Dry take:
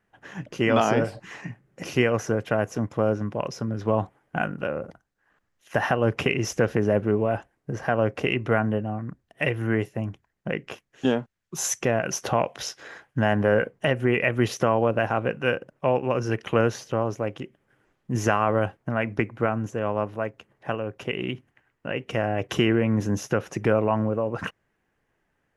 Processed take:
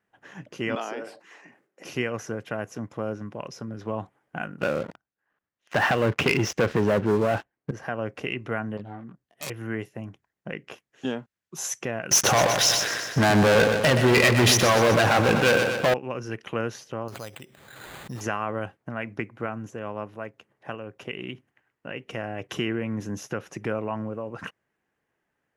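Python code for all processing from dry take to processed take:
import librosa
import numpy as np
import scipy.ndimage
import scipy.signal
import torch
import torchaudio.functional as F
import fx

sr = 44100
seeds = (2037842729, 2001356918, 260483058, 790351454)

y = fx.chain(x, sr, fx.ladder_highpass(hz=250.0, resonance_pct=20),
    fx.sustainer(db_per_s=130.0), at=(0.75, 1.85))
y = fx.chain(y, sr, fx.lowpass(hz=4300.0, slope=12),
    fx.leveller(passes=3), at=(4.61, 7.71))
y = fx.chain(y, sr, fx.self_delay(depth_ms=0.7),
    fx.detune_double(cents=13), at=(8.77, 9.5))
y = fx.chain(y, sr, fx.leveller(passes=5),
    fx.echo_feedback(ms=124, feedback_pct=59, wet_db=-9),
    fx.sustainer(db_per_s=41.0), at=(12.11, 15.94))
y = fx.chain(y, sr, fx.peak_eq(hz=300.0, db=-9.0, octaves=1.6),
    fx.resample_bad(factor=8, down='none', up='hold'),
    fx.pre_swell(db_per_s=38.0), at=(17.08, 18.21))
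y = fx.highpass(y, sr, hz=150.0, slope=6)
y = fx.dynamic_eq(y, sr, hz=600.0, q=0.77, threshold_db=-34.0, ratio=4.0, max_db=-4)
y = y * librosa.db_to_amplitude(-4.0)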